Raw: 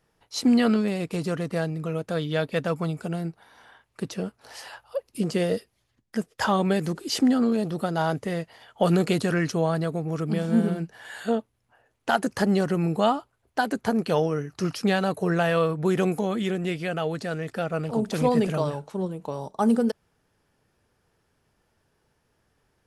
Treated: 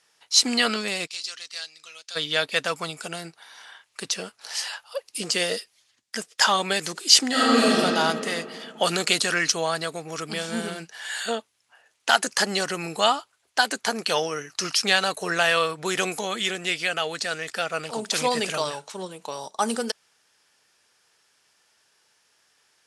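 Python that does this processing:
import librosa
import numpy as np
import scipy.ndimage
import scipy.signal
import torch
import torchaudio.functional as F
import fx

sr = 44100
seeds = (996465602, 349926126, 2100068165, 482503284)

y = fx.bandpass_q(x, sr, hz=4600.0, q=1.6, at=(1.06, 2.15), fade=0.02)
y = fx.reverb_throw(y, sr, start_s=7.3, length_s=0.46, rt60_s=2.5, drr_db=-10.0)
y = fx.weighting(y, sr, curve='ITU-R 468')
y = y * 10.0 ** (3.0 / 20.0)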